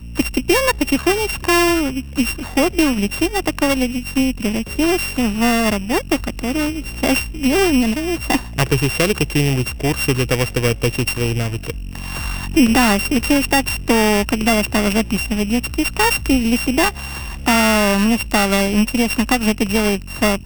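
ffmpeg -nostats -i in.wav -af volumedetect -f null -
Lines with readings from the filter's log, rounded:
mean_volume: -17.5 dB
max_volume: -4.0 dB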